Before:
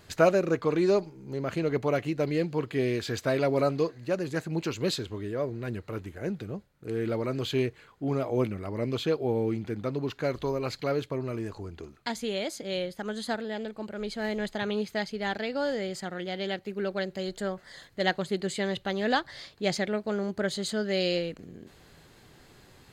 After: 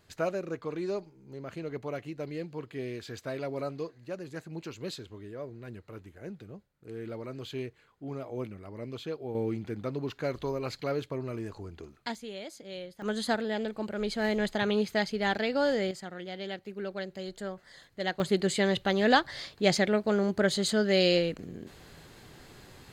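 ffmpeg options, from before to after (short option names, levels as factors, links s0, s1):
-af "asetnsamples=n=441:p=0,asendcmd='9.35 volume volume -3dB;12.15 volume volume -9.5dB;13.02 volume volume 2.5dB;15.91 volume volume -5.5dB;18.2 volume volume 3.5dB',volume=0.335"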